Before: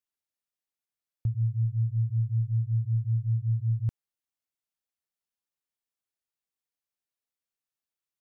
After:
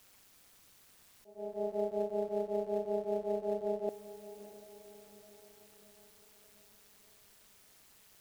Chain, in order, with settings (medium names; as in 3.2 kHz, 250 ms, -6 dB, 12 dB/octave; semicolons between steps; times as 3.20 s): jump at every zero crossing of -45 dBFS; slow attack 484 ms; AM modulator 200 Hz, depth 60%; in parallel at -7.5 dB: short-mantissa float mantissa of 2-bit; on the sum: ring modulator 520 Hz; bass shelf 190 Hz +6 dB; echo that smears into a reverb 609 ms, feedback 53%, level -14 dB; trim -5.5 dB